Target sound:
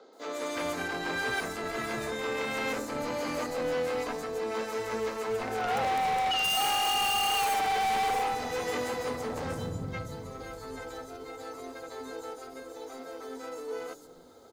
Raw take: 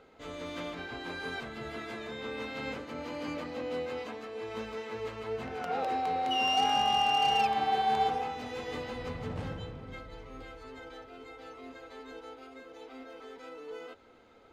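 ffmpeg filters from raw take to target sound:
ffmpeg -i in.wav -filter_complex "[0:a]highpass=frequency=150:poles=1,highshelf=frequency=3100:gain=12,acrossover=split=330|360|4100[link_01][link_02][link_03][link_04];[link_03]adynamicsmooth=sensitivity=7:basefreq=890[link_05];[link_01][link_02][link_05][link_04]amix=inputs=4:normalize=0,volume=34dB,asoftclip=hard,volume=-34dB,acrossover=split=250|5600[link_06][link_07][link_08];[link_08]adelay=130[link_09];[link_06]adelay=360[link_10];[link_10][link_07][link_09]amix=inputs=3:normalize=0,volume=8dB" out.wav

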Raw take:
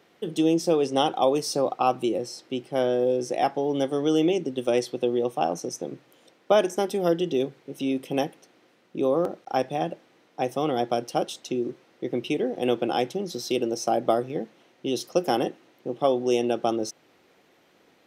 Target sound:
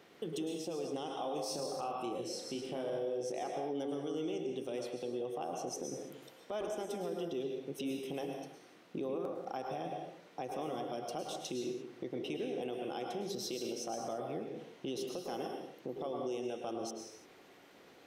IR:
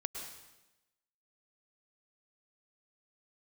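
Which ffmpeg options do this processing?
-filter_complex "[0:a]acompressor=threshold=-36dB:ratio=6,asettb=1/sr,asplit=3[link_01][link_02][link_03];[link_01]atrim=end=1.074[link_04];[link_02]atrim=start=1.07:end=3.32,asetpts=PTS-STARTPTS,afade=type=in:duration=0.004:curve=qsin,afade=type=out:start_time=2.246:duration=0.004:curve=qsin,asplit=2[link_05][link_06];[link_06]adelay=34,volume=-6dB[link_07];[link_05][link_07]amix=inputs=2:normalize=0,atrim=end_sample=99225[link_08];[link_03]atrim=start=3.316[link_09];[link_04][link_08]acrossfade=duration=0.004:curve1=hsin:curve2=qsin[link_10];[link_10][link_09]acrossfade=duration=0.004:curve1=qsin:curve2=hsin[link_11];[1:a]atrim=start_sample=2205,afade=type=out:start_time=0.4:duration=0.01,atrim=end_sample=18081[link_12];[link_11][link_12]afir=irnorm=-1:irlink=0,alimiter=level_in=6.5dB:limit=-24dB:level=0:latency=1:release=29,volume=-6.5dB,volume=1dB"

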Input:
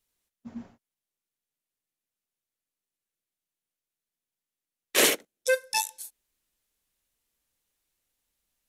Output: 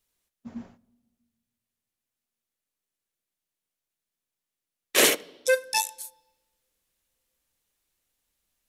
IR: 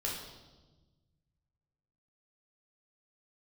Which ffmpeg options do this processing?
-filter_complex "[0:a]asplit=2[link_01][link_02];[1:a]atrim=start_sample=2205,highshelf=frequency=8200:gain=-11.5[link_03];[link_02][link_03]afir=irnorm=-1:irlink=0,volume=-22dB[link_04];[link_01][link_04]amix=inputs=2:normalize=0,volume=1.5dB"

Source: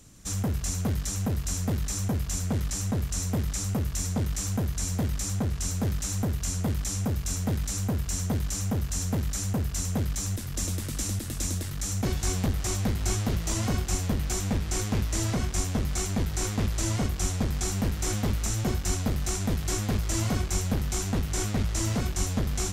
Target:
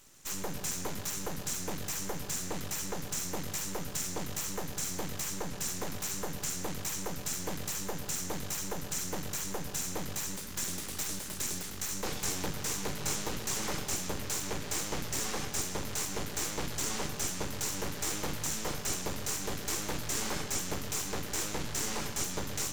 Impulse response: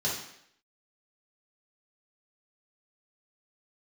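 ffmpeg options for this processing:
-filter_complex "[0:a]aeval=exprs='abs(val(0))':channel_layout=same,lowshelf=frequency=410:gain=-10,bandreject=frequency=670:width=12,asplit=2[link_01][link_02];[1:a]atrim=start_sample=2205,adelay=121[link_03];[link_02][link_03]afir=irnorm=-1:irlink=0,volume=-18.5dB[link_04];[link_01][link_04]amix=inputs=2:normalize=0"

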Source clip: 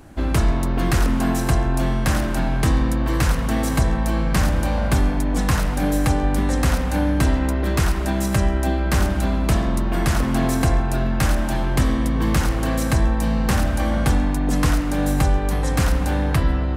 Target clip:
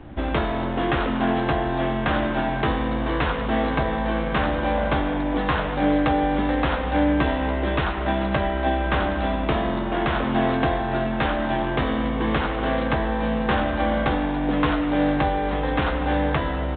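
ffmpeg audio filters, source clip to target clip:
ffmpeg -i in.wav -filter_complex "[0:a]acrossover=split=290|3000[link_01][link_02][link_03];[link_01]acompressor=threshold=-33dB:ratio=4[link_04];[link_04][link_02][link_03]amix=inputs=3:normalize=0,asplit=2[link_05][link_06];[link_06]acrusher=samples=17:mix=1:aa=0.000001,volume=-6.5dB[link_07];[link_05][link_07]amix=inputs=2:normalize=0,asplit=2[link_08][link_09];[link_09]adelay=14,volume=-7dB[link_10];[link_08][link_10]amix=inputs=2:normalize=0" -ar 8000 -c:a pcm_mulaw out.wav

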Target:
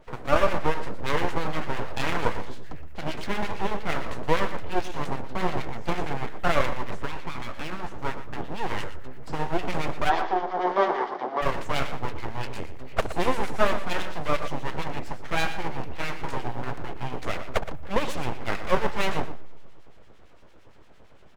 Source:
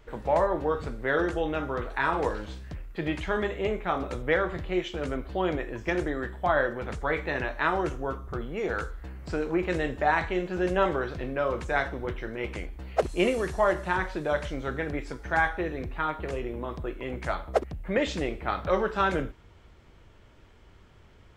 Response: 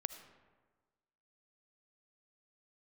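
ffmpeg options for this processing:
-filter_complex "[0:a]equalizer=frequency=560:width=0.91:gain=7.5,asettb=1/sr,asplit=3[link_01][link_02][link_03];[link_01]atrim=end=6.914[link_04];[link_02]atrim=start=6.91:end=8.05,asetpts=PTS-STARTPTS,afade=type=in:duration=0.004:curve=qsin,afade=type=out:start_time=1.136:duration=0.004:curve=qsin,acompressor=threshold=-27dB:ratio=10[link_05];[link_03]atrim=start=8.046[link_06];[link_04][link_05]acrossfade=duration=0.004:curve1=hsin:curve2=qsin[link_07];[link_07][link_06]acrossfade=duration=0.004:curve1=qsin:curve2=hsin,aeval=exprs='clip(val(0),-1,0.0531)':channel_layout=same,acrossover=split=1200[link_08][link_09];[link_08]aeval=exprs='val(0)*(1-0.7/2+0.7/2*cos(2*PI*8.8*n/s))':channel_layout=same[link_10];[link_09]aeval=exprs='val(0)*(1-0.7/2-0.7/2*cos(2*PI*8.8*n/s))':channel_layout=same[link_11];[link_10][link_11]amix=inputs=2:normalize=0,aeval=exprs='abs(val(0))':channel_layout=same,asplit=3[link_12][link_13][link_14];[link_12]afade=type=out:start_time=10.09:duration=0.02[link_15];[link_13]highpass=frequency=250:width=0.5412,highpass=frequency=250:width=1.3066,equalizer=frequency=260:width_type=q:width=4:gain=-4,equalizer=frequency=380:width_type=q:width=4:gain=6,equalizer=frequency=750:width_type=q:width=4:gain=9,equalizer=frequency=1100:width_type=q:width=4:gain=5,equalizer=frequency=2600:width_type=q:width=4:gain=-10,equalizer=frequency=4100:width_type=q:width=4:gain=-6,lowpass=frequency=4900:width=0.5412,lowpass=frequency=4900:width=1.3066,afade=type=in:start_time=10.09:duration=0.02,afade=type=out:start_time=11.41:duration=0.02[link_16];[link_14]afade=type=in:start_time=11.41:duration=0.02[link_17];[link_15][link_16][link_17]amix=inputs=3:normalize=0,aecho=1:1:119:0.237,asplit=2[link_18][link_19];[1:a]atrim=start_sample=2205[link_20];[link_19][link_20]afir=irnorm=-1:irlink=0,volume=-10.5dB[link_21];[link_18][link_21]amix=inputs=2:normalize=0,volume=1.5dB"

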